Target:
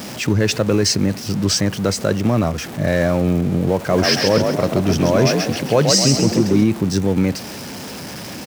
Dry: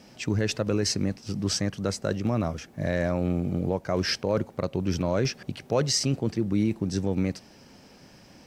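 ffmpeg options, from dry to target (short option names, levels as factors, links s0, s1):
-filter_complex "[0:a]aeval=exprs='val(0)+0.5*0.0168*sgn(val(0))':c=same,highpass=73,asplit=3[s0][s1][s2];[s0]afade=t=out:st=3.89:d=0.02[s3];[s1]asplit=7[s4][s5][s6][s7][s8][s9][s10];[s5]adelay=132,afreqshift=45,volume=0.631[s11];[s6]adelay=264,afreqshift=90,volume=0.292[s12];[s7]adelay=396,afreqshift=135,volume=0.133[s13];[s8]adelay=528,afreqshift=180,volume=0.0617[s14];[s9]adelay=660,afreqshift=225,volume=0.0282[s15];[s10]adelay=792,afreqshift=270,volume=0.013[s16];[s4][s11][s12][s13][s14][s15][s16]amix=inputs=7:normalize=0,afade=t=in:st=3.89:d=0.02,afade=t=out:st=6.63:d=0.02[s17];[s2]afade=t=in:st=6.63:d=0.02[s18];[s3][s17][s18]amix=inputs=3:normalize=0,volume=2.66"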